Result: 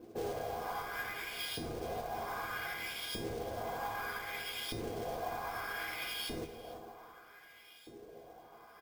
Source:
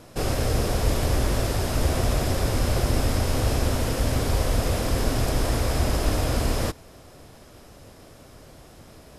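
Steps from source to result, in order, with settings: octaver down 2 oct, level +2 dB; ripple EQ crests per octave 1.8, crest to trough 12 dB; compressor, threshold -17 dBFS, peak gain reduction 6.5 dB; on a send: feedback echo 0.35 s, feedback 49%, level -12.5 dB; on the sum: LFO band-pass saw up 0.61 Hz 300–3600 Hz; in parallel at -1.5 dB: limiter -30.5 dBFS, peak gain reduction 9.5 dB; on the sum: echo 0.457 s -20 dB; speed mistake 24 fps film run at 25 fps; resonator 410 Hz, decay 0.39 s, harmonics all, mix 90%; modulation noise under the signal 16 dB; dynamic EQ 380 Hz, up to -6 dB, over -59 dBFS, Q 1.1; careless resampling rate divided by 3×, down filtered, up hold; gain +11.5 dB

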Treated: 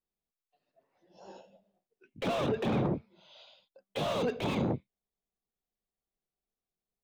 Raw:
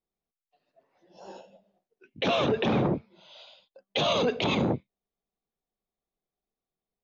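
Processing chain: low shelf 150 Hz +4.5 dB; slew limiter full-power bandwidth 70 Hz; gain -5.5 dB

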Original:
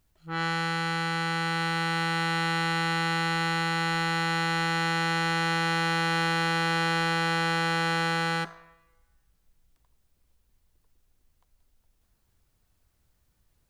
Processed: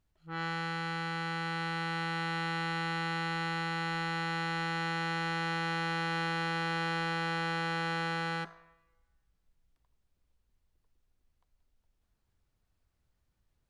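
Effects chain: high shelf 7500 Hz -11.5 dB; gain -6.5 dB

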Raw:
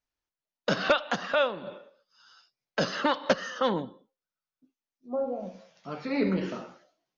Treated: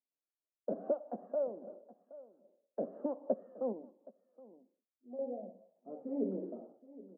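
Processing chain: echo 0.771 s -18 dB; 3.72–5.19 compressor 1.5:1, threshold -47 dBFS, peak gain reduction 8 dB; Chebyshev band-pass 220–690 Hz, order 3; gain -7 dB

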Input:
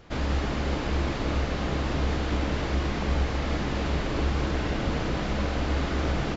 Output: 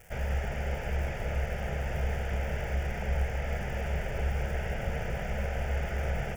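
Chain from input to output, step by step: crackle 490/s -37 dBFS; fixed phaser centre 1100 Hz, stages 6; gain -2.5 dB

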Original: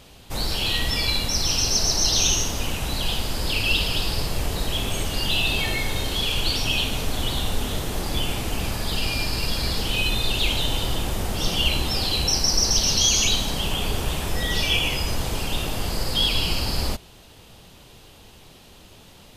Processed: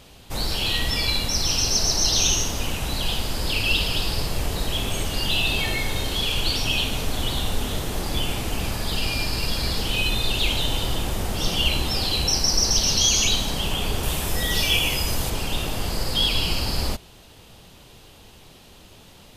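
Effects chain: 14.03–15.3 high shelf 7900 Hz +9.5 dB

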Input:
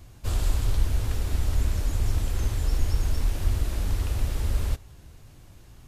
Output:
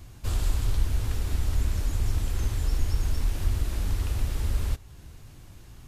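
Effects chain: bell 580 Hz -3 dB 0.83 oct; in parallel at -3 dB: compressor, threshold -34 dBFS, peak gain reduction 17.5 dB; on the sum: gain -2.5 dB

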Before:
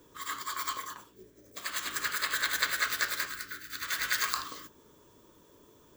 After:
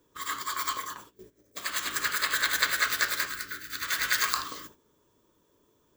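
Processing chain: gate -54 dBFS, range -12 dB; gain +3.5 dB

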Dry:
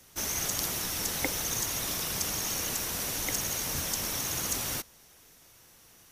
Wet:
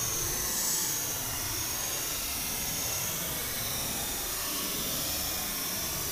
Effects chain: Paulstretch 15×, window 0.05 s, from 1.58

